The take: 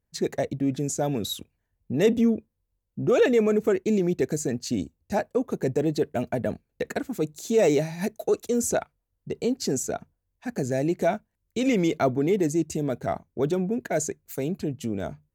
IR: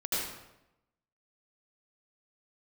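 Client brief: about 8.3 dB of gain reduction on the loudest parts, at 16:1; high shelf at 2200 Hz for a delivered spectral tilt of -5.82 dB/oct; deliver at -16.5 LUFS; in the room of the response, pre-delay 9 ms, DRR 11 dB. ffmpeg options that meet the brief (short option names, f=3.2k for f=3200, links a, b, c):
-filter_complex "[0:a]highshelf=f=2.2k:g=-6.5,acompressor=threshold=-24dB:ratio=16,asplit=2[a][b];[1:a]atrim=start_sample=2205,adelay=9[c];[b][c]afir=irnorm=-1:irlink=0,volume=-18dB[d];[a][d]amix=inputs=2:normalize=0,volume=14dB"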